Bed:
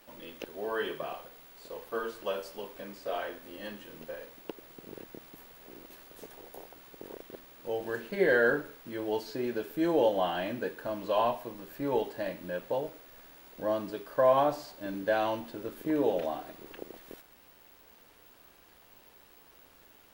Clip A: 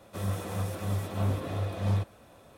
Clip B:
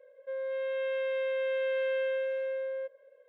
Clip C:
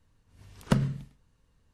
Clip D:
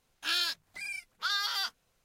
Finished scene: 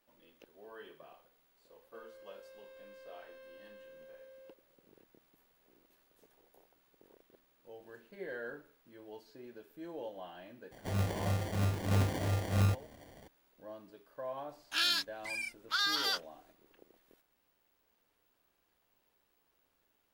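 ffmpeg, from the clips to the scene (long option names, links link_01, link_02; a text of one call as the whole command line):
ffmpeg -i bed.wav -i cue0.wav -i cue1.wav -i cue2.wav -i cue3.wav -filter_complex "[0:a]volume=-18dB[link_01];[2:a]asoftclip=type=hard:threshold=-36.5dB[link_02];[1:a]acrusher=samples=34:mix=1:aa=0.000001[link_03];[link_02]atrim=end=3.28,asetpts=PTS-STARTPTS,volume=-17.5dB,afade=type=in:duration=0.004:curve=hsin,afade=type=out:start_time=3.276:duration=0.004:curve=hsin,adelay=1660[link_04];[link_03]atrim=end=2.57,asetpts=PTS-STARTPTS,volume=-1dB,afade=type=in:duration=0.004:curve=hsin,afade=type=out:start_time=2.566:duration=0.004:curve=hsin,adelay=10710[link_05];[4:a]atrim=end=2.04,asetpts=PTS-STARTPTS,volume=-0.5dB,afade=type=in:duration=0.004:curve=hsin,afade=type=out:start_time=2.036:duration=0.004:curve=hsin,adelay=14490[link_06];[link_01][link_04][link_05][link_06]amix=inputs=4:normalize=0" out.wav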